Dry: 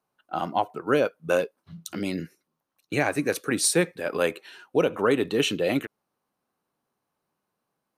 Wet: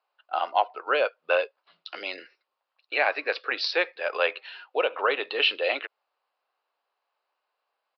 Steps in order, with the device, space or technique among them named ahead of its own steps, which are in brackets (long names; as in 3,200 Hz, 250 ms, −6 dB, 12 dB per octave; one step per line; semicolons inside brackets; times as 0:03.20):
musical greeting card (downsampling to 11,025 Hz; high-pass filter 550 Hz 24 dB per octave; parametric band 2,700 Hz +5 dB 0.28 octaves)
level +2.5 dB